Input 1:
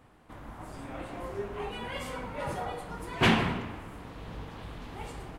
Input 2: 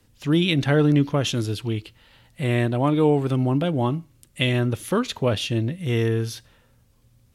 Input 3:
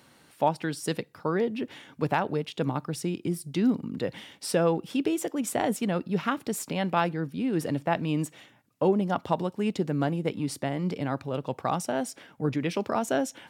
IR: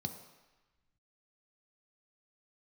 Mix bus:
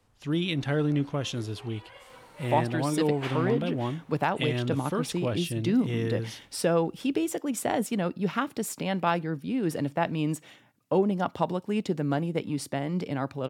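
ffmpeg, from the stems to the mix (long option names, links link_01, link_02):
-filter_complex "[0:a]highpass=frequency=400:width=0.5412,highpass=frequency=400:width=1.3066,volume=-12dB[link_01];[1:a]lowpass=11000,volume=-8dB[link_02];[2:a]adelay=2100,volume=-0.5dB[link_03];[link_01][link_02][link_03]amix=inputs=3:normalize=0"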